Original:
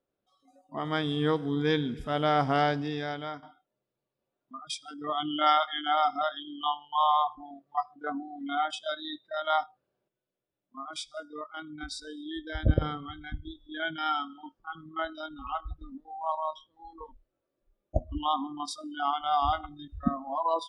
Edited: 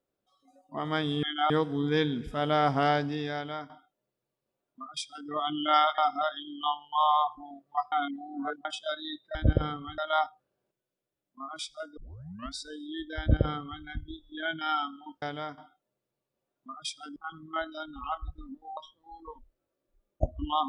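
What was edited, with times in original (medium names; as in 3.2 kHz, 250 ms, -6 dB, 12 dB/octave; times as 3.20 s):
3.07–5.01 s: copy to 14.59 s
5.71–5.98 s: move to 1.23 s
7.92–8.65 s: reverse
11.34 s: tape start 0.57 s
12.56–13.19 s: copy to 9.35 s
16.20–16.50 s: delete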